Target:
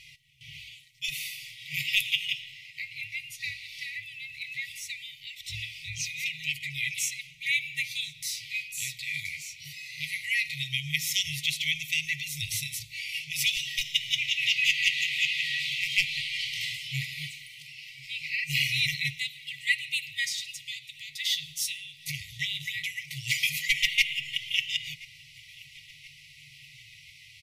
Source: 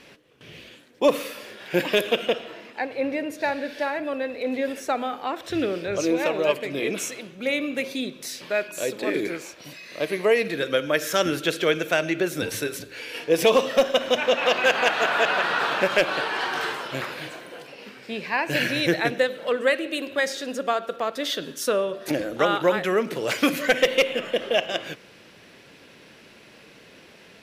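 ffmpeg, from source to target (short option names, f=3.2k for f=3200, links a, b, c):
-af "afftfilt=real='re*(1-between(b*sr/4096,160,1900))':imag='im*(1-between(b*sr/4096,160,1900))':win_size=4096:overlap=0.75,flanger=delay=2.4:depth=8.9:regen=56:speed=0.16:shape=sinusoidal,aecho=1:1:1028|2056|3084|4112:0.0631|0.0347|0.0191|0.0105,volume=5.5dB"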